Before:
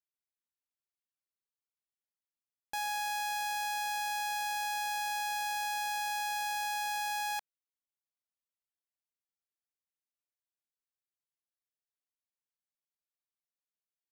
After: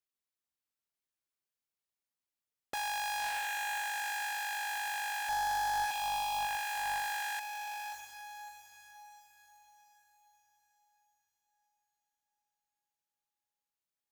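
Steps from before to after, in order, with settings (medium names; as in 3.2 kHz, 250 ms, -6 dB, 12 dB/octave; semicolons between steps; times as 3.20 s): 5.29–5.91 s: steep high-pass 380 Hz 48 dB/octave; echo that smears into a reverb 628 ms, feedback 44%, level -6 dB; loudspeaker Doppler distortion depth 0.88 ms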